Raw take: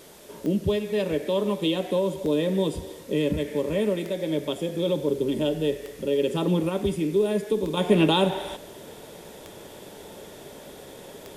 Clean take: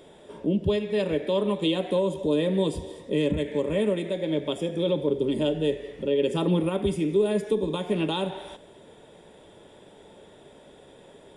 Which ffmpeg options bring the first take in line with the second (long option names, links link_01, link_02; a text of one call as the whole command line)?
ffmpeg -i in.wav -af "adeclick=threshold=4,afwtdn=0.0028,asetnsamples=nb_out_samples=441:pad=0,asendcmd='7.77 volume volume -7dB',volume=0dB" out.wav